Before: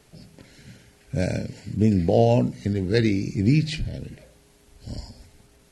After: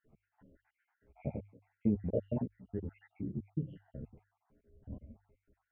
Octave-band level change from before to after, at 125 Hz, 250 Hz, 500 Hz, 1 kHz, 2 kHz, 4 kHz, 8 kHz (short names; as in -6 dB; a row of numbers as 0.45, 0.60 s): -17.5 dB, -14.5 dB, -17.5 dB, -25.5 dB, under -30 dB, under -40 dB, under -35 dB